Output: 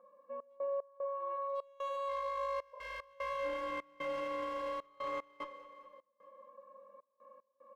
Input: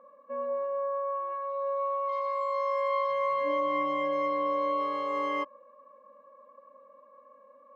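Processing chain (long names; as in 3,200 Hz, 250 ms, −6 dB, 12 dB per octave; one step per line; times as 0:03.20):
asymmetric clip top −27.5 dBFS
flanger 1.1 Hz, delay 9.7 ms, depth 2.4 ms, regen −78%
brickwall limiter −34 dBFS, peak gain reduction 8.5 dB
on a send: repeating echo 210 ms, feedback 55%, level −17 dB
on the sum: automatic gain control gain up to 5 dB
comb filter 5.7 ms, depth 53%
gate pattern "xx.x.xxx.xx" 75 BPM −24 dB
healed spectral selection 0:02.76–0:02.98, 430–1,100 Hz after
level −4 dB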